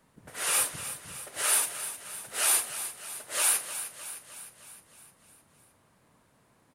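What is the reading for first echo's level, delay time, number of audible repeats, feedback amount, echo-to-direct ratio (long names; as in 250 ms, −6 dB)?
−11.5 dB, 307 ms, 6, 59%, −9.5 dB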